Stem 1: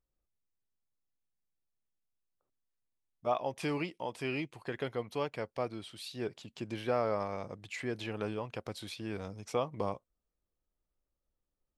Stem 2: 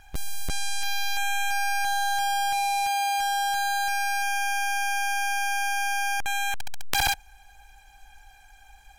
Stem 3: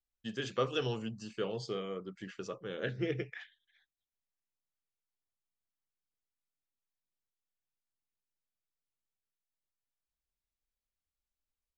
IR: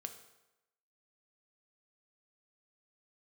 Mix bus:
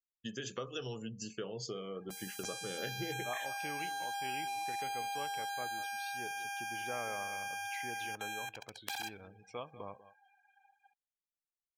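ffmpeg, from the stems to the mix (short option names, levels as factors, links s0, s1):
-filter_complex "[0:a]equalizer=f=2700:w=0.45:g=8.5,volume=0.168,asplit=3[s0][s1][s2];[s1]volume=0.447[s3];[s2]volume=0.251[s4];[1:a]highpass=240,acompressor=threshold=0.0398:ratio=5,adelay=1950,volume=0.355,asplit=2[s5][s6];[s6]volume=0.0708[s7];[2:a]acompressor=threshold=0.00891:ratio=4,lowpass=f=6900:t=q:w=3.7,volume=1,asplit=2[s8][s9];[s9]volume=0.355[s10];[3:a]atrim=start_sample=2205[s11];[s3][s10]amix=inputs=2:normalize=0[s12];[s12][s11]afir=irnorm=-1:irlink=0[s13];[s4][s7]amix=inputs=2:normalize=0,aecho=0:1:193:1[s14];[s0][s5][s8][s13][s14]amix=inputs=5:normalize=0,afftdn=nr=26:nf=-54"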